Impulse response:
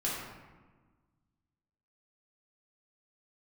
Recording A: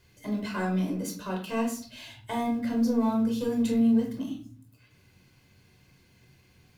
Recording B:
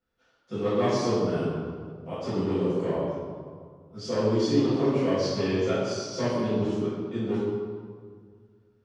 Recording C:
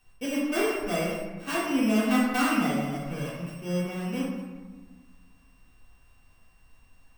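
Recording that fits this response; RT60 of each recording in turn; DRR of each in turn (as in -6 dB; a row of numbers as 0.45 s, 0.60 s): C; 0.45 s, 1.9 s, 1.4 s; 0.5 dB, -13.5 dB, -7.0 dB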